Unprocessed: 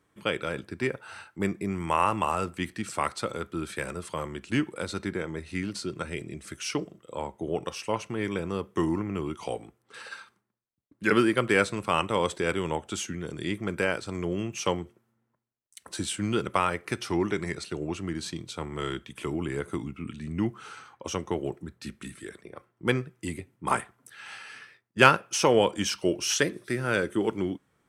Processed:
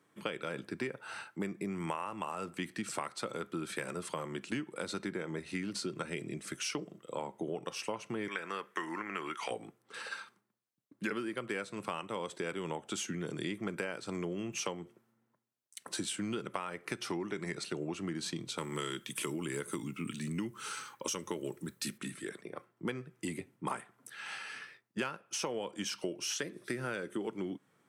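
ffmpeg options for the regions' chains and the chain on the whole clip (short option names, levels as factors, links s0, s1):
-filter_complex "[0:a]asettb=1/sr,asplit=3[s0][s1][s2];[s0]atrim=end=8.284[s3];[s1]atrim=start=8.28:end=9.51,asetpts=PTS-STARTPTS,afade=t=in:d=0.004:c=qsin,afade=t=out:st=1.226:d=0.004:c=qsin,highpass=f=900:p=1,equalizer=f=1700:t=o:w=1.1:g=13[s4];[s2]atrim=start=9.506[s5];[s3][s4]acrossfade=d=0.004:c1=hsin:c2=qsin[s6];[s6][s5]acrossfade=d=0.004:c1=qsin:c2=hsin,asettb=1/sr,asplit=3[s7][s8][s9];[s7]atrim=end=18.584[s10];[s8]atrim=start=18.58:end=21.98,asetpts=PTS-STARTPTS,afade=t=in:d=0.004:c=qsin,afade=t=out:st=3.396:d=0.004:c=qsin,asuperstop=centerf=720:order=4:qfactor=4.5,aemphasis=mode=production:type=75kf,bandreject=f=47.53:t=h:w=4,bandreject=f=95.06:t=h:w=4[s11];[s9]atrim=start=21.976[s12];[s10][s11]acrossfade=d=0.004:c1=hsin:c2=qsin[s13];[s13][s12]acrossfade=d=0.004:c1=qsin:c2=hsin,highpass=f=130:w=0.5412,highpass=f=130:w=1.3066,acompressor=threshold=0.0224:ratio=16"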